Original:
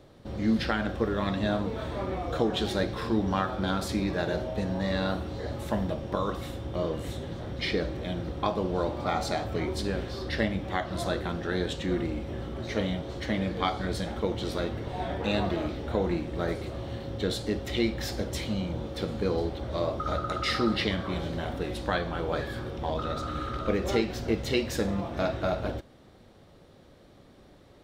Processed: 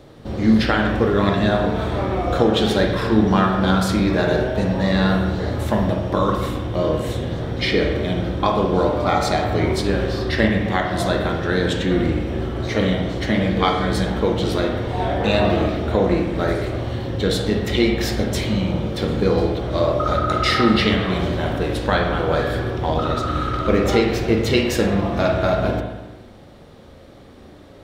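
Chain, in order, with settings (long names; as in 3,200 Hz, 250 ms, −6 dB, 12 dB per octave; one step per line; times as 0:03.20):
spring reverb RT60 1.1 s, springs 37/50 ms, chirp 80 ms, DRR 2 dB
level +8.5 dB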